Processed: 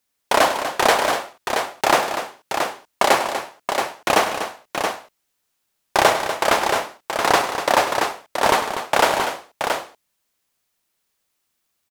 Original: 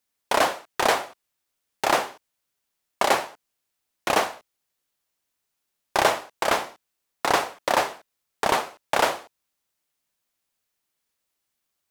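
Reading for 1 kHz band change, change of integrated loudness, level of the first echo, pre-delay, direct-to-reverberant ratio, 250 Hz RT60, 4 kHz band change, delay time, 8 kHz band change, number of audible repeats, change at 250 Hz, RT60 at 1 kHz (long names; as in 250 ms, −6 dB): +6.0 dB, +4.0 dB, −12.5 dB, no reverb audible, no reverb audible, no reverb audible, +6.0 dB, 101 ms, +6.0 dB, 4, +6.0 dB, no reverb audible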